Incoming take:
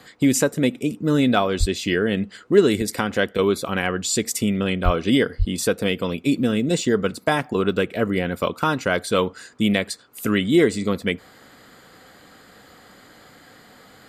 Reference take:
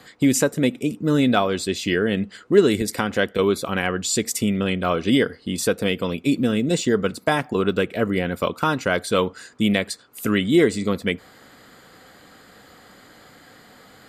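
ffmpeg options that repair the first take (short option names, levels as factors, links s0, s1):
-filter_complex "[0:a]asplit=3[s0][s1][s2];[s0]afade=t=out:st=1.59:d=0.02[s3];[s1]highpass=f=140:w=0.5412,highpass=f=140:w=1.3066,afade=t=in:st=1.59:d=0.02,afade=t=out:st=1.71:d=0.02[s4];[s2]afade=t=in:st=1.71:d=0.02[s5];[s3][s4][s5]amix=inputs=3:normalize=0,asplit=3[s6][s7][s8];[s6]afade=t=out:st=4.84:d=0.02[s9];[s7]highpass=f=140:w=0.5412,highpass=f=140:w=1.3066,afade=t=in:st=4.84:d=0.02,afade=t=out:st=4.96:d=0.02[s10];[s8]afade=t=in:st=4.96:d=0.02[s11];[s9][s10][s11]amix=inputs=3:normalize=0,asplit=3[s12][s13][s14];[s12]afade=t=out:st=5.38:d=0.02[s15];[s13]highpass=f=140:w=0.5412,highpass=f=140:w=1.3066,afade=t=in:st=5.38:d=0.02,afade=t=out:st=5.5:d=0.02[s16];[s14]afade=t=in:st=5.5:d=0.02[s17];[s15][s16][s17]amix=inputs=3:normalize=0"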